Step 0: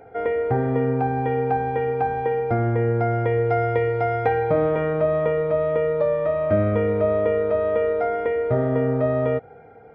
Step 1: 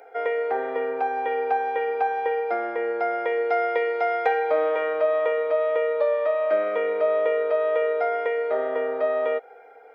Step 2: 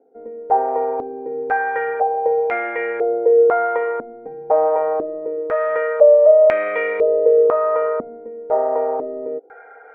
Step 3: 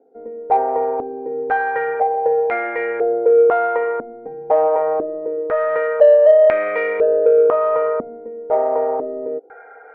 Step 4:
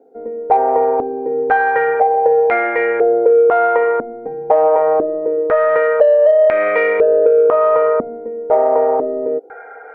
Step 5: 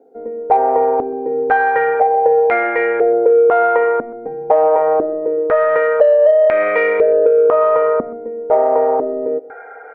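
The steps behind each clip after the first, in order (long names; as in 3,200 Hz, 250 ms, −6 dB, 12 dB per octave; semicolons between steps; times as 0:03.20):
high-pass filter 430 Hz 24 dB per octave; high-shelf EQ 2,400 Hz +9 dB; level −1 dB
in parallel at −10 dB: soft clipping −25 dBFS, distortion −10 dB; on the sum: low-pass on a step sequencer 2 Hz 240–2,200 Hz
in parallel at −8 dB: soft clipping −12.5 dBFS, distortion −12 dB; on the sum: high-frequency loss of the air 170 metres; level −1 dB
downward compressor 10 to 1, threshold −14 dBFS, peak gain reduction 8 dB; level +6 dB
single-tap delay 126 ms −20.5 dB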